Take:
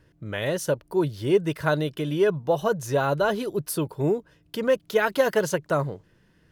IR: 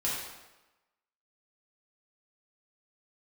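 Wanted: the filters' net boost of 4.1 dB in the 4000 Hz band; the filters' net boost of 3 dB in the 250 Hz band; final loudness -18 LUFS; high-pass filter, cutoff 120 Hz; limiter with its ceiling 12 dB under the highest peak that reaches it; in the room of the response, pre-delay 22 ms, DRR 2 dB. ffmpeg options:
-filter_complex "[0:a]highpass=120,equalizer=f=250:t=o:g=5,equalizer=f=4k:t=o:g=5.5,alimiter=limit=-18dB:level=0:latency=1,asplit=2[a][b];[1:a]atrim=start_sample=2205,adelay=22[c];[b][c]afir=irnorm=-1:irlink=0,volume=-8.5dB[d];[a][d]amix=inputs=2:normalize=0,volume=8.5dB"

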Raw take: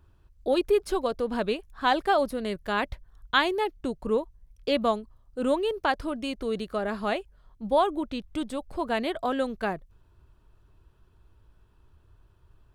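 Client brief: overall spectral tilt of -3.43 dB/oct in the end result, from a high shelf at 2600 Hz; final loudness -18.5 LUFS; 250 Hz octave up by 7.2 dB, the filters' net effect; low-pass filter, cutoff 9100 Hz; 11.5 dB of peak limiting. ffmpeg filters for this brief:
-af "lowpass=9.1k,equalizer=f=250:t=o:g=8.5,highshelf=f=2.6k:g=8.5,volume=8.5dB,alimiter=limit=-7dB:level=0:latency=1"

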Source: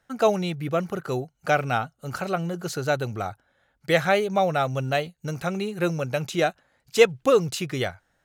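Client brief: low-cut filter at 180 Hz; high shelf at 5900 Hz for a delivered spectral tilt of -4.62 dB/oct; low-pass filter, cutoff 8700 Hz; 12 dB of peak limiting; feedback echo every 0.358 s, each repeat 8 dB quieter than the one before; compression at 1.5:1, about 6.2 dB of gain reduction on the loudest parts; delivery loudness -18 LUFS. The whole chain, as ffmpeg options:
-af "highpass=180,lowpass=8.7k,highshelf=f=5.9k:g=-8.5,acompressor=threshold=-28dB:ratio=1.5,alimiter=limit=-21dB:level=0:latency=1,aecho=1:1:358|716|1074|1432|1790:0.398|0.159|0.0637|0.0255|0.0102,volume=14.5dB"

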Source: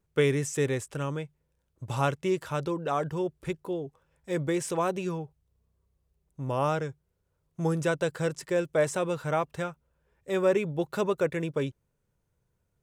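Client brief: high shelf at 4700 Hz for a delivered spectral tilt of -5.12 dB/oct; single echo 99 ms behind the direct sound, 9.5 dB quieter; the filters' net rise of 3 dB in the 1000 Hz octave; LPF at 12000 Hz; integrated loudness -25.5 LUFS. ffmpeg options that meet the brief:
-af "lowpass=12k,equalizer=f=1k:t=o:g=3.5,highshelf=f=4.7k:g=7,aecho=1:1:99:0.335,volume=3dB"

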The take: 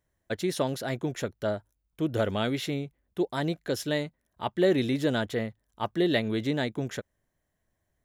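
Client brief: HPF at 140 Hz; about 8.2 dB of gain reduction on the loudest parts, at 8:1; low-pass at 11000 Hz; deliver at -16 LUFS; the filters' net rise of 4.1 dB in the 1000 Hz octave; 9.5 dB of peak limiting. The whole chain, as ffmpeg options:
-af "highpass=140,lowpass=11k,equalizer=f=1k:t=o:g=5.5,acompressor=threshold=-27dB:ratio=8,volume=21.5dB,alimiter=limit=-4dB:level=0:latency=1"

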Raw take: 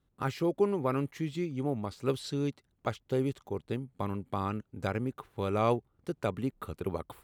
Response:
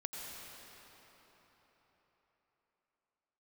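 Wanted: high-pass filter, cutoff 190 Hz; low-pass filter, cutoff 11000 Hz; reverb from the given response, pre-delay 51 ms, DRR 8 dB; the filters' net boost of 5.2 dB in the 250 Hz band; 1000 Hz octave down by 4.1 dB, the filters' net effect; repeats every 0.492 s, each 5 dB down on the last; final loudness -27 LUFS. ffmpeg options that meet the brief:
-filter_complex "[0:a]highpass=190,lowpass=11k,equalizer=f=250:t=o:g=8.5,equalizer=f=1k:t=o:g=-6,aecho=1:1:492|984|1476|1968|2460|2952|3444:0.562|0.315|0.176|0.0988|0.0553|0.031|0.0173,asplit=2[a][b];[1:a]atrim=start_sample=2205,adelay=51[c];[b][c]afir=irnorm=-1:irlink=0,volume=-8.5dB[d];[a][d]amix=inputs=2:normalize=0,volume=2.5dB"

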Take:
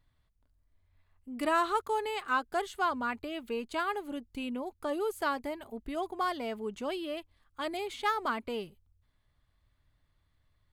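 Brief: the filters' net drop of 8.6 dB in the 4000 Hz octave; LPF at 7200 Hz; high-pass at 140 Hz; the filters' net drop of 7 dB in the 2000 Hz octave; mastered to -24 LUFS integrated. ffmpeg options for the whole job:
-af "highpass=140,lowpass=7.2k,equalizer=f=2k:t=o:g=-9,equalizer=f=4k:t=o:g=-7.5,volume=12dB"

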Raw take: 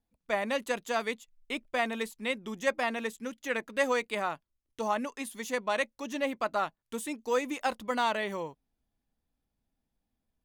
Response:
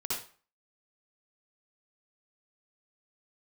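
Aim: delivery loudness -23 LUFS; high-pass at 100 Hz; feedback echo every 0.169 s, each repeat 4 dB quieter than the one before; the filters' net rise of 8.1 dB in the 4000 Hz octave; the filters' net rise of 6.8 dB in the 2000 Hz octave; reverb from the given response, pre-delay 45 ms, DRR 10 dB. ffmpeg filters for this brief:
-filter_complex "[0:a]highpass=100,equalizer=f=2k:t=o:g=6,equalizer=f=4k:t=o:g=8,aecho=1:1:169|338|507|676|845|1014|1183|1352|1521:0.631|0.398|0.25|0.158|0.0994|0.0626|0.0394|0.0249|0.0157,asplit=2[a][b];[1:a]atrim=start_sample=2205,adelay=45[c];[b][c]afir=irnorm=-1:irlink=0,volume=-14dB[d];[a][d]amix=inputs=2:normalize=0,volume=3dB"

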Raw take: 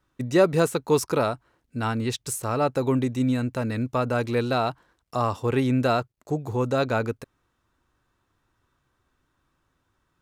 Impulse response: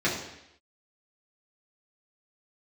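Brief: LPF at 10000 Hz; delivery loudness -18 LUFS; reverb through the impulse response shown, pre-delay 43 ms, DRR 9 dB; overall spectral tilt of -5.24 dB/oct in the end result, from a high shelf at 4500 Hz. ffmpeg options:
-filter_complex "[0:a]lowpass=10k,highshelf=f=4.5k:g=-4.5,asplit=2[a][b];[1:a]atrim=start_sample=2205,adelay=43[c];[b][c]afir=irnorm=-1:irlink=0,volume=-22dB[d];[a][d]amix=inputs=2:normalize=0,volume=6.5dB"

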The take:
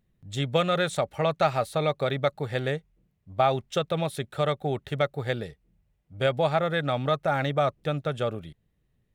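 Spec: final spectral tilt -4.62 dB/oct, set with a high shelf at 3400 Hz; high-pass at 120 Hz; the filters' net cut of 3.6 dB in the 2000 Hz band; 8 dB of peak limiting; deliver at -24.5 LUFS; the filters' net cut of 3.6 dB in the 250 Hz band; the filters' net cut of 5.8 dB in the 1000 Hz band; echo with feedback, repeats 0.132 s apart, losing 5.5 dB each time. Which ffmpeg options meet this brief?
-af "highpass=120,equalizer=f=250:t=o:g=-4.5,equalizer=f=1k:t=o:g=-8,equalizer=f=2k:t=o:g=-4,highshelf=f=3.4k:g=7,alimiter=limit=-20dB:level=0:latency=1,aecho=1:1:132|264|396|528|660|792|924:0.531|0.281|0.149|0.079|0.0419|0.0222|0.0118,volume=6.5dB"

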